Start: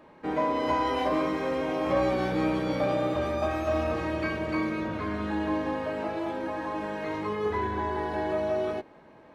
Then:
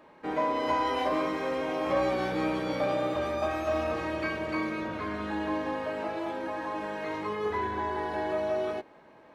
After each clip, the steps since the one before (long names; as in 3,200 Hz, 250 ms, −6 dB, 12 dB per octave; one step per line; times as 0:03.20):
low-shelf EQ 290 Hz −7 dB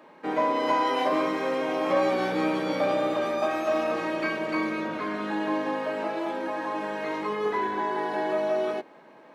high-pass filter 160 Hz 24 dB per octave
level +3.5 dB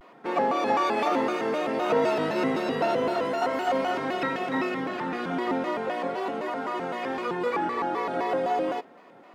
pitch modulation by a square or saw wave square 3.9 Hz, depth 250 cents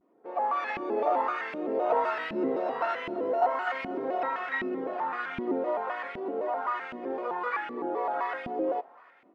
low-shelf EQ 340 Hz −5 dB
automatic gain control gain up to 10 dB
auto-filter band-pass saw up 1.3 Hz 220–2,500 Hz
level −4.5 dB